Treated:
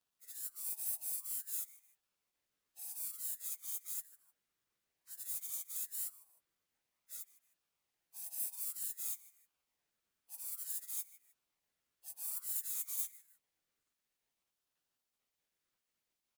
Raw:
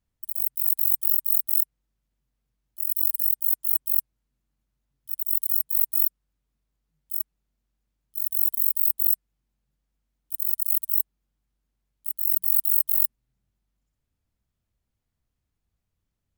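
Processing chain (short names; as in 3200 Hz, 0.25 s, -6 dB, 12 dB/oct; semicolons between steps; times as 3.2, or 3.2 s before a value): pitch shift by moving bins +1.5 st; on a send: feedback echo 0.154 s, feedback 32%, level -20.5 dB; on the sum: spectral gate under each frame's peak -25 dB weak; ring modulator with a swept carrier 1500 Hz, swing 50%, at 0.54 Hz; gain +8.5 dB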